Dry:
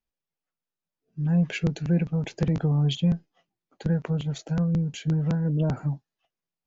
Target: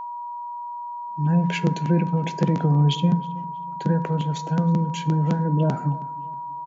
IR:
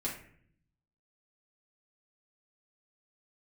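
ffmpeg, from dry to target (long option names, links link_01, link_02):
-filter_complex "[0:a]highpass=frequency=160:width=0.5412,highpass=frequency=160:width=1.3066,lowshelf=frequency=320:gain=3.5,asplit=2[link_01][link_02];[link_02]adelay=319,lowpass=frequency=2800:poles=1,volume=-19.5dB,asplit=2[link_03][link_04];[link_04]adelay=319,lowpass=frequency=2800:poles=1,volume=0.4,asplit=2[link_05][link_06];[link_06]adelay=319,lowpass=frequency=2800:poles=1,volume=0.4[link_07];[link_01][link_03][link_05][link_07]amix=inputs=4:normalize=0,asplit=2[link_08][link_09];[1:a]atrim=start_sample=2205,asetrate=33516,aresample=44100[link_10];[link_09][link_10]afir=irnorm=-1:irlink=0,volume=-14dB[link_11];[link_08][link_11]amix=inputs=2:normalize=0,aeval=exprs='val(0)+0.0251*sin(2*PI*960*n/s)':channel_layout=same,volume=2dB"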